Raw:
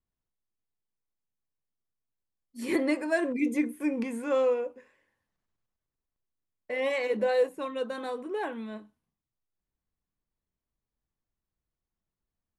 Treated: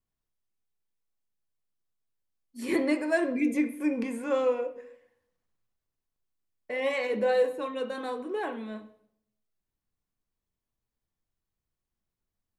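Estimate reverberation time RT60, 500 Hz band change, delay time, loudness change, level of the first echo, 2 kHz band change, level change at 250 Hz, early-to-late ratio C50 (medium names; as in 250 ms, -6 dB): 0.70 s, 0.0 dB, no echo, +0.5 dB, no echo, +0.5 dB, +1.0 dB, 13.0 dB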